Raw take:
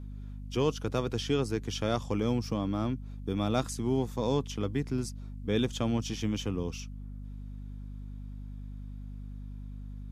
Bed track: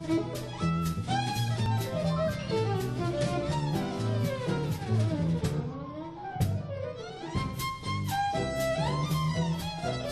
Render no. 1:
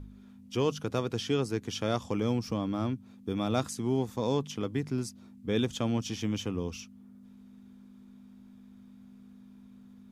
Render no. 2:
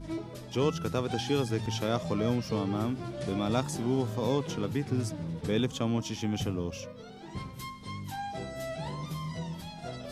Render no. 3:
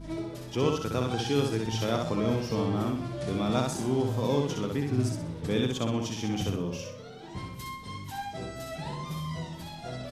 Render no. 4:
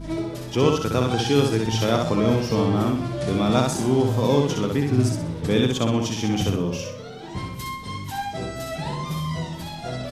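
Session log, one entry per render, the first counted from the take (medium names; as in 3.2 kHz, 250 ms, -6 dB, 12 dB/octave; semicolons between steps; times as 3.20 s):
de-hum 50 Hz, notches 3
add bed track -8 dB
feedback delay 63 ms, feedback 38%, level -3.5 dB
trim +7.5 dB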